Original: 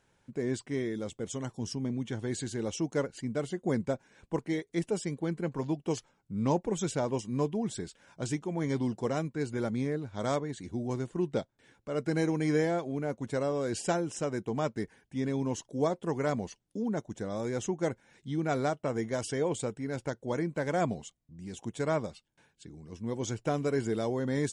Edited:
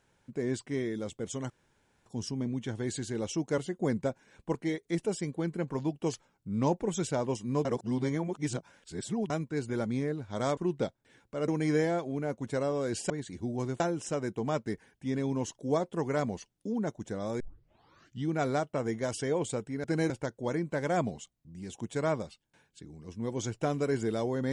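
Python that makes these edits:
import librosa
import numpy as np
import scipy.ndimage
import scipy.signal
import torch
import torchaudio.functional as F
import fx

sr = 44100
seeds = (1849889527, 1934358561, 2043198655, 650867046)

y = fx.edit(x, sr, fx.insert_room_tone(at_s=1.5, length_s=0.56),
    fx.cut(start_s=3.02, length_s=0.4),
    fx.reverse_span(start_s=7.49, length_s=1.65),
    fx.move(start_s=10.41, length_s=0.7, to_s=13.9),
    fx.move(start_s=12.02, length_s=0.26, to_s=19.94),
    fx.tape_start(start_s=17.5, length_s=0.85), tone=tone)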